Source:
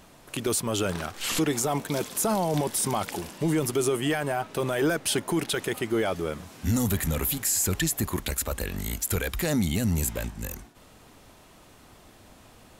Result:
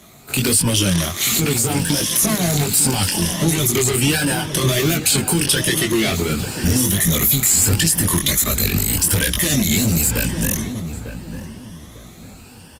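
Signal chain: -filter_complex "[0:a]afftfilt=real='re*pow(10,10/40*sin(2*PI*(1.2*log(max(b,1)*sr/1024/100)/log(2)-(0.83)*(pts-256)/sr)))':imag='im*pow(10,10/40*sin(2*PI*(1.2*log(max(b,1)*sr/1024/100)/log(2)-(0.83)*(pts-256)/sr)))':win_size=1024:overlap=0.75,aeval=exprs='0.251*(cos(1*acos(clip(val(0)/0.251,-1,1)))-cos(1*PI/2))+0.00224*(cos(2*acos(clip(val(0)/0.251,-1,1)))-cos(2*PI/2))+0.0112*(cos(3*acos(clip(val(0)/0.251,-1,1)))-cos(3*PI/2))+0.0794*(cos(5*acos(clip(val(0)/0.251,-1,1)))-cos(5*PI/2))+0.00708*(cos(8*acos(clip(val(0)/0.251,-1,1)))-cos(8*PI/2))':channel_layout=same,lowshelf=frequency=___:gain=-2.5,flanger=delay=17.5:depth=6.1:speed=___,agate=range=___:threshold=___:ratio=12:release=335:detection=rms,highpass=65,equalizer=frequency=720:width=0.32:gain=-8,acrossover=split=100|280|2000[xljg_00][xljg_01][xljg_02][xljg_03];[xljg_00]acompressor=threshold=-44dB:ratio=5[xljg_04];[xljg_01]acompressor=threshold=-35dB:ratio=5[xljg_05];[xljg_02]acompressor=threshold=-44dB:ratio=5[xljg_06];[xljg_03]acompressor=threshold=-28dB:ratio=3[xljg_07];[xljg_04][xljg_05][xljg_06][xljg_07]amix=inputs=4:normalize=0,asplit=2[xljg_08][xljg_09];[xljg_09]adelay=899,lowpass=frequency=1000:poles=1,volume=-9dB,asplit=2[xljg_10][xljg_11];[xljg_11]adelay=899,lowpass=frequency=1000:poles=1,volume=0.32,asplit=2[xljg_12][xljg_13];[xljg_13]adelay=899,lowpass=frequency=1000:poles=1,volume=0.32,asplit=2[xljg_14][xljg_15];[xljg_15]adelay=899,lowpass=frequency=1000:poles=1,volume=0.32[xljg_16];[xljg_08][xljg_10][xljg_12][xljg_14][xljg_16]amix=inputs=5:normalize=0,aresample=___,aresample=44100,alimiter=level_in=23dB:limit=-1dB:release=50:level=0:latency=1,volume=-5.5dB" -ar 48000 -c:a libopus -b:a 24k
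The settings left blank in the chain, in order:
220, 1.4, -10dB, -40dB, 32000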